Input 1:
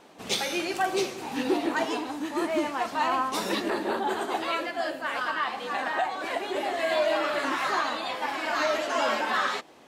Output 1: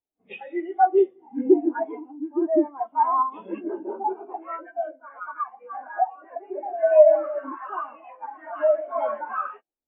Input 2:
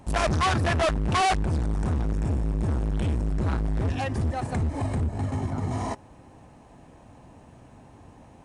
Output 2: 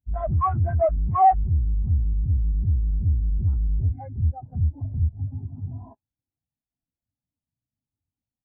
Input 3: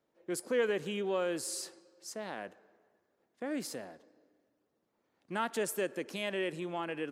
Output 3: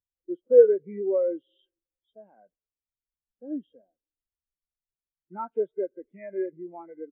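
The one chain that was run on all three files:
knee-point frequency compression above 1.3 kHz 1.5:1; added noise pink -59 dBFS; resampled via 8 kHz; spectral contrast expander 2.5:1; normalise loudness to -24 LUFS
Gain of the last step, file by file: +10.5 dB, +4.5 dB, +15.0 dB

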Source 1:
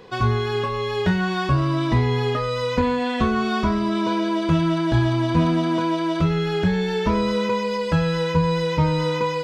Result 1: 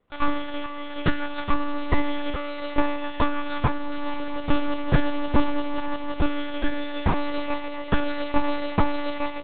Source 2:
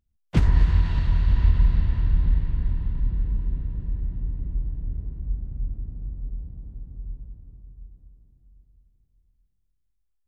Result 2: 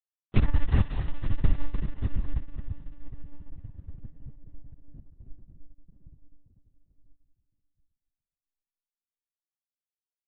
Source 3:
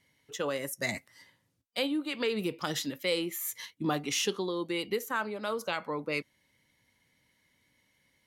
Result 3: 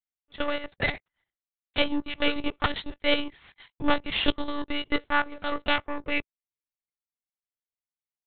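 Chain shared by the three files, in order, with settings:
power-law waveshaper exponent 2; monotone LPC vocoder at 8 kHz 290 Hz; peak normalisation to -6 dBFS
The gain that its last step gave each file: +6.5 dB, +2.5 dB, +16.0 dB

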